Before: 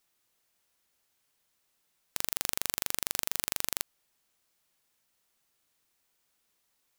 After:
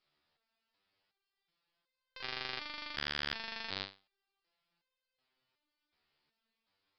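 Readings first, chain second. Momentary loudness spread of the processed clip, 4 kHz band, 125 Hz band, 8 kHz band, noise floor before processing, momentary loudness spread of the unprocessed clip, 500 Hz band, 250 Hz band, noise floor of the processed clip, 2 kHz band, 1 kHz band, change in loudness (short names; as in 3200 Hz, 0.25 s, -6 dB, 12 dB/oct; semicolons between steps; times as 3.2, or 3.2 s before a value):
8 LU, -1.5 dB, -1.5 dB, -31.5 dB, -76 dBFS, 5 LU, -3.0 dB, -2.0 dB, under -85 dBFS, +1.0 dB, -2.0 dB, -7.5 dB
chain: downsampling 11025 Hz; dynamic EQ 2000 Hz, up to +4 dB, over -55 dBFS, Q 1.2; stepped resonator 2.7 Hz 74–520 Hz; gain +8.5 dB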